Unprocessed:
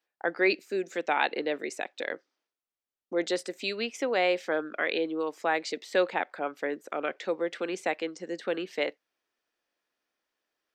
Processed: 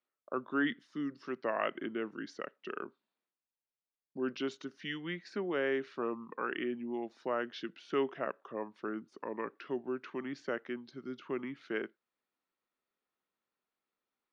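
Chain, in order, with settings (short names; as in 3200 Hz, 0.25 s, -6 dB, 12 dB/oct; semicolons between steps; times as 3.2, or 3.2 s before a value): varispeed -25%; air absorption 95 m; gain -7 dB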